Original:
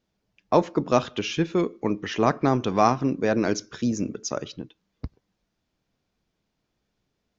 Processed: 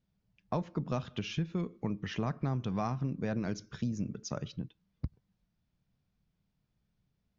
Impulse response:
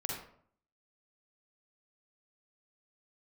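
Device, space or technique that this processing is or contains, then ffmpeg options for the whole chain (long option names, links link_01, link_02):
jukebox: -af "lowpass=6200,lowshelf=frequency=230:width_type=q:width=1.5:gain=9.5,acompressor=threshold=-22dB:ratio=4,volume=-8.5dB"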